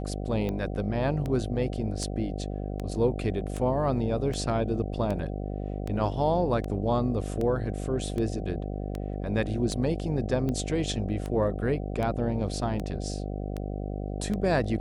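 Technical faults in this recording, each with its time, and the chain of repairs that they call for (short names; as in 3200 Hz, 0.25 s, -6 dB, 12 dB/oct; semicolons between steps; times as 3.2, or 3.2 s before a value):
buzz 50 Hz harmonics 15 -33 dBFS
tick 78 rpm -20 dBFS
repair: de-click; de-hum 50 Hz, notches 15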